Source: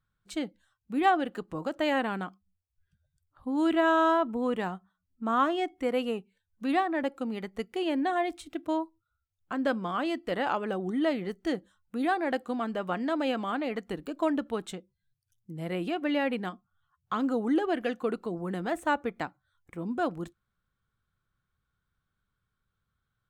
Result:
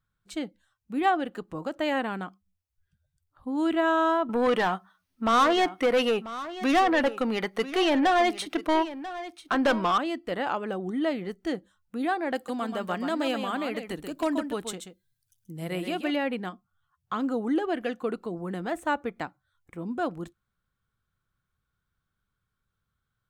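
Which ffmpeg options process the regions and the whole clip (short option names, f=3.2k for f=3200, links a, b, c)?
-filter_complex "[0:a]asettb=1/sr,asplit=3[a][b][c];[a]atrim=end=4.294[d];[b]atrim=start=4.29:end=9.98,asetpts=PTS-STARTPTS,afade=t=in:d=0.004:c=qsin,afade=t=out:st=5.686:d=0.004:c=qsin,bandreject=f=7.4k:w=5.3,asplit=2[e][f];[f]highpass=f=720:p=1,volume=21dB,asoftclip=type=tanh:threshold=-14dB[g];[e][g]amix=inputs=2:normalize=0,lowpass=f=6.9k:p=1,volume=-6dB,aecho=1:1:990:0.188,atrim=end_sample=250929[h];[c]atrim=start=9.976[i];[d][h]acrossfade=d=0.004:c1=hsin:c2=qsin[j];[j][i]acrossfade=d=0.004:c1=qsin:c2=hsin,asettb=1/sr,asplit=3[k][l][m];[k]atrim=end=12.354[n];[l]atrim=start=12.35:end=16.16,asetpts=PTS-STARTPTS,afade=t=in:d=0.004:c=qsin,afade=t=out:st=3.806:d=0.004:c=qsin,highshelf=f=4.4k:g=11,aecho=1:1:131:0.422,atrim=end_sample=168021,aeval=exprs='0.126*(abs(mod(val(0)/0.126+3,4)-2)-1)':c=same[o];[m]atrim=start=16.156[p];[n][o]acrossfade=d=0.004:c1=hsin:c2=qsin[q];[q][p]acrossfade=d=0.004:c1=qsin:c2=hsin"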